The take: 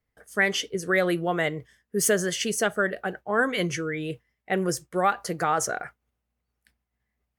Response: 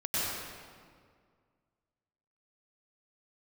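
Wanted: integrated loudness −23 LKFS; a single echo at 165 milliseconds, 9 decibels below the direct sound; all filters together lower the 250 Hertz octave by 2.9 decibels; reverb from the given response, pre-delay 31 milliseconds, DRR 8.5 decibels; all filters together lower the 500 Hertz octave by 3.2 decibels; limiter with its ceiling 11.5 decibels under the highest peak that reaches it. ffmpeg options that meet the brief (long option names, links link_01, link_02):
-filter_complex "[0:a]equalizer=frequency=250:width_type=o:gain=-3.5,equalizer=frequency=500:width_type=o:gain=-3,alimiter=limit=-21.5dB:level=0:latency=1,aecho=1:1:165:0.355,asplit=2[link_01][link_02];[1:a]atrim=start_sample=2205,adelay=31[link_03];[link_02][link_03]afir=irnorm=-1:irlink=0,volume=-17dB[link_04];[link_01][link_04]amix=inputs=2:normalize=0,volume=8dB"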